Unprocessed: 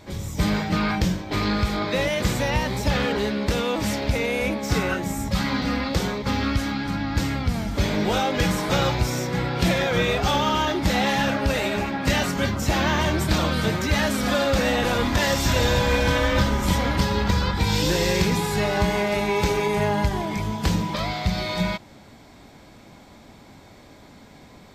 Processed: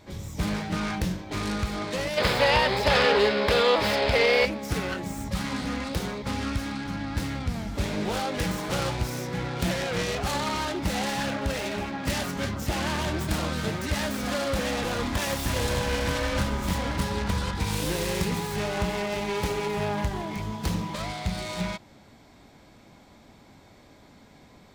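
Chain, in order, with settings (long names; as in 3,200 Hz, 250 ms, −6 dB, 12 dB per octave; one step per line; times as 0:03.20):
phase distortion by the signal itself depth 0.27 ms
gain on a spectral selection 0:02.18–0:04.45, 370–5,300 Hz +11 dB
level −5.5 dB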